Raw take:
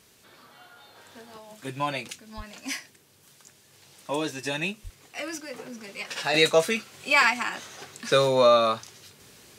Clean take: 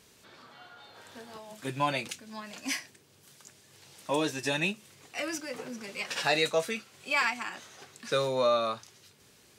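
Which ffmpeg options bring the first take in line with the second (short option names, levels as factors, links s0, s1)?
-filter_complex "[0:a]asplit=3[s0][s1][s2];[s0]afade=t=out:st=2.36:d=0.02[s3];[s1]highpass=f=140:w=0.5412,highpass=f=140:w=1.3066,afade=t=in:st=2.36:d=0.02,afade=t=out:st=2.48:d=0.02[s4];[s2]afade=t=in:st=2.48:d=0.02[s5];[s3][s4][s5]amix=inputs=3:normalize=0,asplit=3[s6][s7][s8];[s6]afade=t=out:st=4.83:d=0.02[s9];[s7]highpass=f=140:w=0.5412,highpass=f=140:w=1.3066,afade=t=in:st=4.83:d=0.02,afade=t=out:st=4.95:d=0.02[s10];[s8]afade=t=in:st=4.95:d=0.02[s11];[s9][s10][s11]amix=inputs=3:normalize=0,agate=range=0.0891:threshold=0.00398,asetnsamples=n=441:p=0,asendcmd='6.34 volume volume -7.5dB',volume=1"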